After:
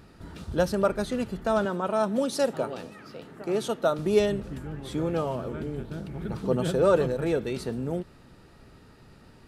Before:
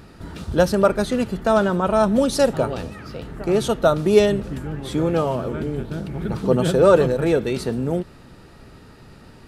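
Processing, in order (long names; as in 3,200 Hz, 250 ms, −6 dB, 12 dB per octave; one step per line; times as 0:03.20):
0:01.65–0:03.99: high-pass filter 190 Hz 12 dB per octave
level −7.5 dB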